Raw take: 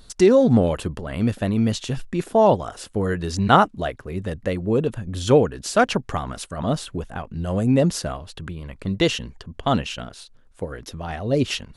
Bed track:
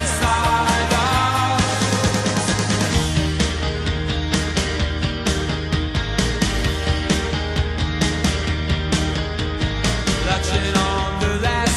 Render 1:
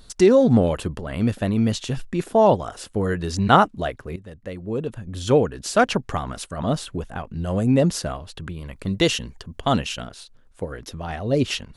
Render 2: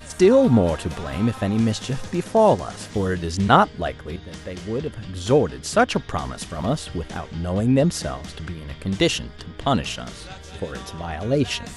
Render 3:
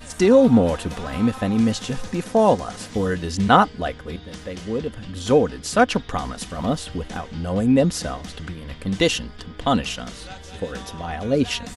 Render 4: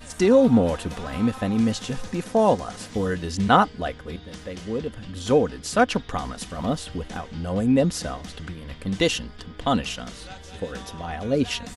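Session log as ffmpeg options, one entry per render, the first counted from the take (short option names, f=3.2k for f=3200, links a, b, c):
-filter_complex "[0:a]asettb=1/sr,asplit=3[a][b][c];[a]atrim=end=8.544[d];[b]atrim=start=8.54:end=10.07,asetpts=PTS-STARTPTS,afade=t=in:d=0.004:c=qsin,afade=t=out:st=1.526:d=0.004:c=qsin,highshelf=f=6.7k:g=8.5[e];[c]atrim=start=10.066[f];[d][e]acrossfade=d=0.004:c1=hsin:c2=qsin[g];[g][f]acrossfade=d=0.004:c1=qsin:c2=hsin,asplit=2[h][i];[h]atrim=end=4.16,asetpts=PTS-STARTPTS,afade=t=out:st=4.156:d=0.004:c=hsin:silence=0.177828[j];[i]atrim=start=4.16,asetpts=PTS-STARTPTS,afade=t=in:d=1.55:silence=0.177828[k];[j][k]concat=n=2:v=0:a=1"
-filter_complex "[1:a]volume=-19dB[a];[0:a][a]amix=inputs=2:normalize=0"
-af "aecho=1:1:4:0.37"
-af "volume=-2.5dB"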